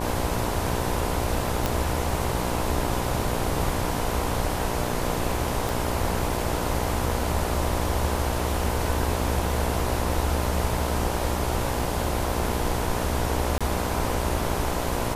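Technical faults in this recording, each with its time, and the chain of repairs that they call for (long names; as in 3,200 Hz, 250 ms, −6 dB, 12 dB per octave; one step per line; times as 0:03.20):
mains buzz 60 Hz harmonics 17 −30 dBFS
0:01.66: click
0:05.69: click
0:13.58–0:13.61: drop-out 26 ms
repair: click removal
hum removal 60 Hz, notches 17
repair the gap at 0:13.58, 26 ms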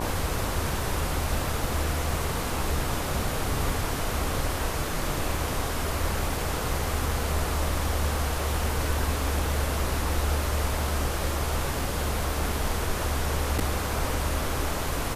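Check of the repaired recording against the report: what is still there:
0:05.69: click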